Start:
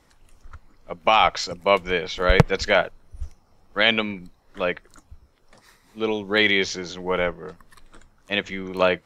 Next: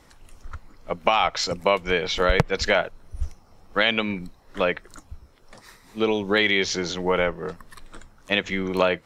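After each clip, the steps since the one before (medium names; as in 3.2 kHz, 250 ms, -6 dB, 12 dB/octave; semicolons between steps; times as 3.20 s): compression 3:1, threshold -24 dBFS, peak gain reduction 12.5 dB; trim +5.5 dB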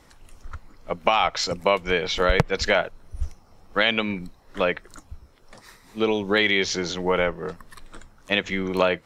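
no audible change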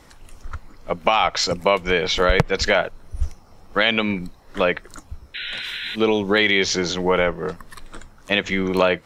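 in parallel at -2.5 dB: peak limiter -15 dBFS, peak gain reduction 11 dB; on the sum: painted sound noise, 5.34–5.96 s, 1.4–4.1 kHz -30 dBFS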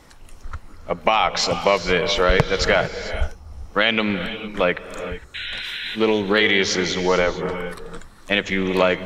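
gated-style reverb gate 480 ms rising, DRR 10 dB; loudspeaker Doppler distortion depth 0.27 ms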